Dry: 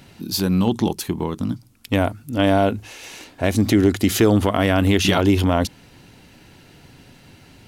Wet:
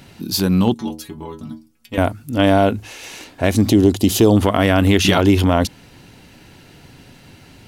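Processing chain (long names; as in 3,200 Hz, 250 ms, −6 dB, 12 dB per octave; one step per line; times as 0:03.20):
0:00.74–0:01.98: stiff-string resonator 74 Hz, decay 0.39 s, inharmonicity 0.008
0:03.69–0:04.37: flat-topped bell 1,700 Hz −11.5 dB 1.1 octaves
level +3 dB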